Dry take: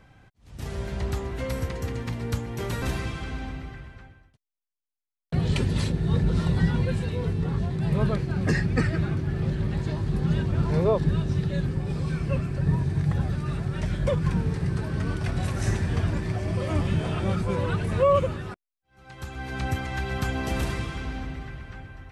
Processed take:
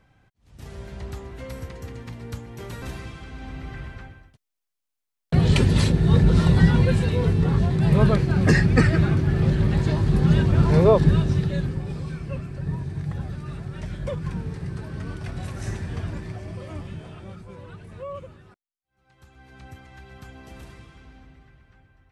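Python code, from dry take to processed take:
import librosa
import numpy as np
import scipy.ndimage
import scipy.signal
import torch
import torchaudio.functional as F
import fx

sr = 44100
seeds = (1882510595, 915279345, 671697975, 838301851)

y = fx.gain(x, sr, db=fx.line((3.32, -6.0), (3.84, 6.5), (11.09, 6.5), (12.2, -5.0), (16.18, -5.0), (17.45, -15.5)))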